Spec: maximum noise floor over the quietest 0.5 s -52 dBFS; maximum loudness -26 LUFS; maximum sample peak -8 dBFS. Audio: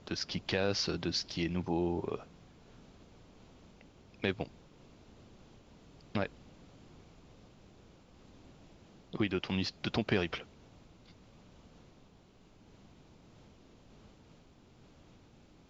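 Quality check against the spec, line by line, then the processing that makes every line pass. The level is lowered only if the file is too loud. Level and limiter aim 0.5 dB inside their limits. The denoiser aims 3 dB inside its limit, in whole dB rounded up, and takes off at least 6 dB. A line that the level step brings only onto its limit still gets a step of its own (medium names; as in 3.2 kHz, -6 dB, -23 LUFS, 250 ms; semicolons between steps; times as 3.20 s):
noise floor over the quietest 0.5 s -61 dBFS: pass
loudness -35.0 LUFS: pass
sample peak -16.5 dBFS: pass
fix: none needed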